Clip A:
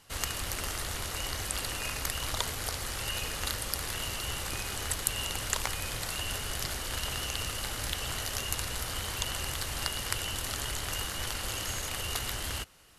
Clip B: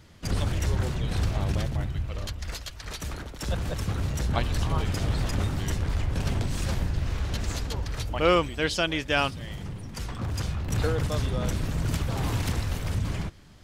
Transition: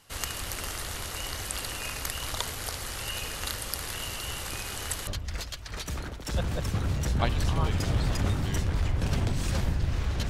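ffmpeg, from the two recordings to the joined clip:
ffmpeg -i cue0.wav -i cue1.wav -filter_complex "[0:a]apad=whole_dur=10.29,atrim=end=10.29,atrim=end=5.072[link_01];[1:a]atrim=start=2.208:end=7.43[link_02];[link_01][link_02]acrossfade=duration=0.004:curve1=hsin:curve2=hsin" out.wav

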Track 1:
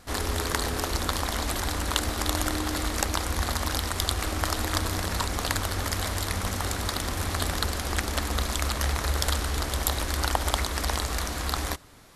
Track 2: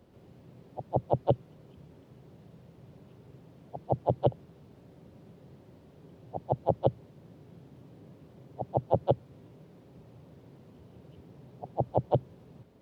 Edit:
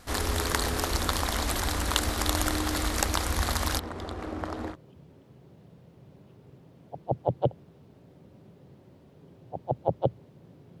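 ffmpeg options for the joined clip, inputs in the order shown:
ffmpeg -i cue0.wav -i cue1.wav -filter_complex "[0:a]asplit=3[link_01][link_02][link_03];[link_01]afade=type=out:start_time=3.78:duration=0.02[link_04];[link_02]bandpass=frequency=330:width_type=q:width=0.67:csg=0,afade=type=in:start_time=3.78:duration=0.02,afade=type=out:start_time=4.76:duration=0.02[link_05];[link_03]afade=type=in:start_time=4.76:duration=0.02[link_06];[link_04][link_05][link_06]amix=inputs=3:normalize=0,apad=whole_dur=10.8,atrim=end=10.8,atrim=end=4.76,asetpts=PTS-STARTPTS[link_07];[1:a]atrim=start=1.51:end=7.61,asetpts=PTS-STARTPTS[link_08];[link_07][link_08]acrossfade=duration=0.06:curve1=tri:curve2=tri" out.wav

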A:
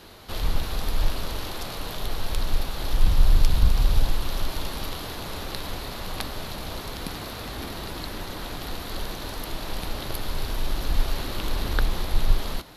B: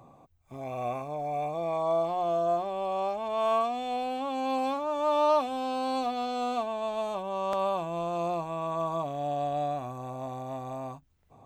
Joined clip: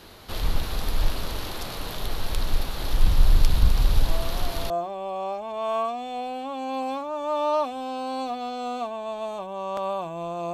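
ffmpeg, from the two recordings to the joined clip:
ffmpeg -i cue0.wav -i cue1.wav -filter_complex "[1:a]asplit=2[link_01][link_02];[0:a]apad=whole_dur=10.53,atrim=end=10.53,atrim=end=4.702[link_03];[link_02]atrim=start=2.458:end=8.29[link_04];[link_01]atrim=start=1.84:end=2.46,asetpts=PTS-STARTPTS,volume=-10dB,afade=type=in:duration=0.004:curve=hsin,afade=type=out:start_time=0.616:duration=0.004:curve=hsin,adelay=4080[link_05];[link_03][link_04]acrossfade=duration=0.004:curve1=hsin:curve2=hsin[link_06];[link_06][link_05]amix=inputs=2:normalize=0" out.wav

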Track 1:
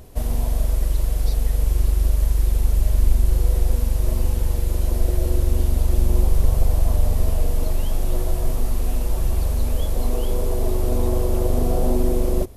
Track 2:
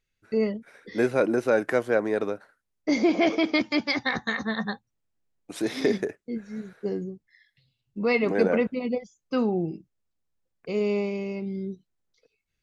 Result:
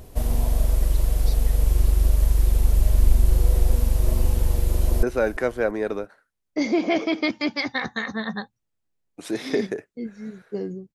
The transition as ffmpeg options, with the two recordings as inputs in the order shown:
ffmpeg -i cue0.wav -i cue1.wav -filter_complex "[0:a]apad=whole_dur=10.94,atrim=end=10.94,atrim=end=5.032[link_01];[1:a]atrim=start=1.338:end=7.25[link_02];[link_01][link_02]acrossfade=duration=0.004:curve1=hsin:curve2=hsin,asplit=2[link_03][link_04];[link_04]afade=type=in:start_time=4.72:duration=0.01,afade=type=out:start_time=5.03:duration=0.01,aecho=0:1:340|680|1020:0.141254|0.0565015|0.0226006[link_05];[link_03][link_05]amix=inputs=2:normalize=0" out.wav

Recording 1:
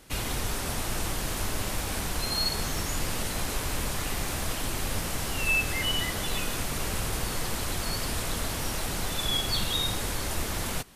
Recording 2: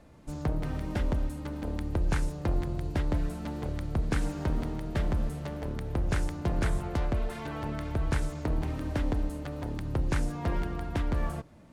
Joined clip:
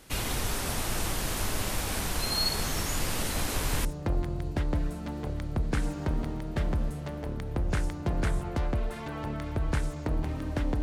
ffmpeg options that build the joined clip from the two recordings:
ffmpeg -i cue0.wav -i cue1.wav -filter_complex "[1:a]asplit=2[link_01][link_02];[0:a]apad=whole_dur=10.82,atrim=end=10.82,atrim=end=3.852[link_03];[link_02]atrim=start=2.238:end=9.21[link_04];[link_01]atrim=start=1.57:end=2.24,asetpts=PTS-STARTPTS,volume=-7.5dB,afade=type=in:duration=0.004:curve=hsin,afade=type=out:start_time=0.666:duration=0.004:curve=hsin,adelay=3180[link_05];[link_03][link_04]acrossfade=duration=0.004:curve1=hsin:curve2=hsin[link_06];[link_06][link_05]amix=inputs=2:normalize=0" out.wav

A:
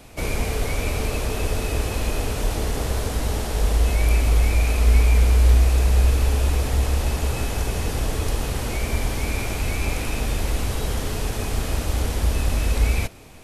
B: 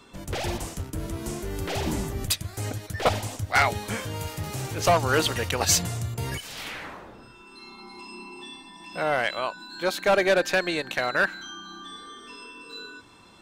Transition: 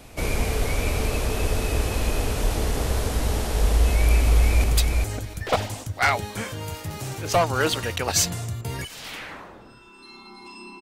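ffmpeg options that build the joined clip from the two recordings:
ffmpeg -i cue0.wav -i cue1.wav -filter_complex "[0:a]apad=whole_dur=10.81,atrim=end=10.81,atrim=end=4.642[link_01];[1:a]atrim=start=2.168:end=8.34[link_02];[link_01][link_02]acrossfade=duration=0.004:curve1=hsin:curve2=hsin,asplit=2[link_03][link_04];[link_04]afade=type=in:start_time=4.2:duration=0.01,afade=type=out:start_time=4.64:duration=0.01,aecho=0:1:400|800|1200:0.668344|0.100252|0.0150377[link_05];[link_03][link_05]amix=inputs=2:normalize=0" out.wav

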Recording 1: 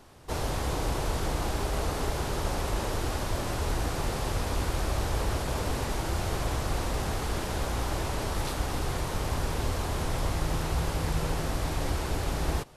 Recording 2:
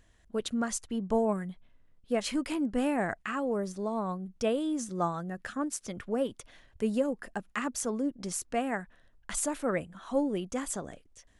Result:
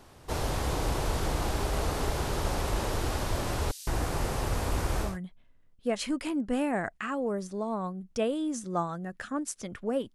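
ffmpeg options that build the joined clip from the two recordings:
ffmpeg -i cue0.wav -i cue1.wav -filter_complex "[0:a]asettb=1/sr,asplit=3[link_01][link_02][link_03];[link_01]atrim=end=3.714[link_04];[link_02]atrim=start=3.71:end=5.18,asetpts=PTS-STARTPTS,afade=type=in:duration=0.004:curve=qsin,afade=type=out:start_time=1.466:duration=0.004:curve=qsin,acrossover=split=3800[link_05][link_06];[link_05]adelay=160[link_07];[link_07][link_06]amix=inputs=2:normalize=0,atrim=end_sample=64827[link_08];[link_03]atrim=start=5.176[link_09];[link_04][link_08]acrossfade=duration=0.004:curve1=hsin:curve2=qsin[link_10];[link_10][link_09]acrossfade=duration=0.004:curve1=qsin:curve2=hsin,apad=whole_dur=10.14,atrim=end=10.14,atrim=end=5.18,asetpts=PTS-STARTPTS[link_11];[1:a]atrim=start=1.25:end=6.39,asetpts=PTS-STARTPTS[link_12];[link_11][link_12]acrossfade=duration=0.18:curve1=tri:curve2=tri" out.wav

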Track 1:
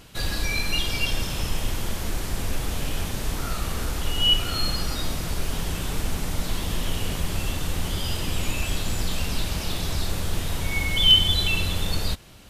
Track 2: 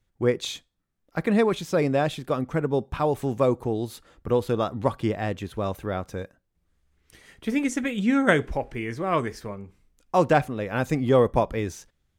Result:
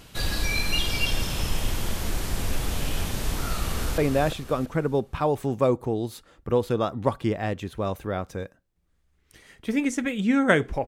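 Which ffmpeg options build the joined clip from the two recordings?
ffmpeg -i cue0.wav -i cue1.wav -filter_complex "[0:a]apad=whole_dur=10.87,atrim=end=10.87,atrim=end=3.982[link_01];[1:a]atrim=start=1.768:end=8.66[link_02];[link_01][link_02]acrossfade=duration=0.004:curve1=hsin:curve2=hsin,asplit=2[link_03][link_04];[link_04]afade=type=in:start_time=3.64:duration=0.01,afade=type=out:start_time=3.98:duration=0.01,aecho=0:1:340|680|1020|1360:0.530884|0.18581|0.0650333|0.0227617[link_05];[link_03][link_05]amix=inputs=2:normalize=0" out.wav

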